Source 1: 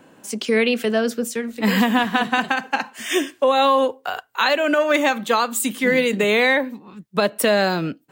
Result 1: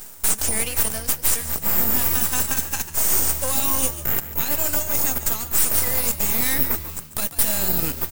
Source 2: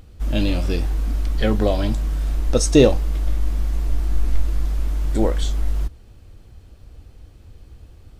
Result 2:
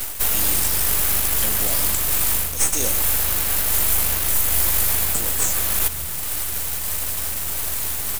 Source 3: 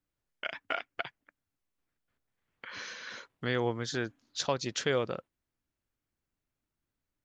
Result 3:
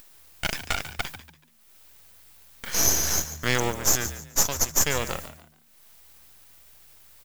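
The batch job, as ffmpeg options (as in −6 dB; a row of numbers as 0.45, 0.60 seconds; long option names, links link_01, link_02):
-filter_complex "[0:a]aemphasis=mode=production:type=50kf,agate=range=-33dB:threshold=-42dB:ratio=3:detection=peak,tiltshelf=frequency=1100:gain=-5,aexciter=amount=9.4:drive=9.1:freq=6000,areverse,acompressor=threshold=-19dB:ratio=8,areverse,alimiter=limit=-14.5dB:level=0:latency=1:release=442,acompressor=mode=upward:threshold=-39dB:ratio=2.5,aeval=exprs='max(val(0),0)':channel_layout=same,asplit=4[link_01][link_02][link_03][link_04];[link_02]adelay=143,afreqshift=76,volume=-13dB[link_05];[link_03]adelay=286,afreqshift=152,volume=-23.2dB[link_06];[link_04]adelay=429,afreqshift=228,volume=-33.3dB[link_07];[link_01][link_05][link_06][link_07]amix=inputs=4:normalize=0,volume=9dB"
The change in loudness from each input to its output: 0.0, +3.5, +10.0 LU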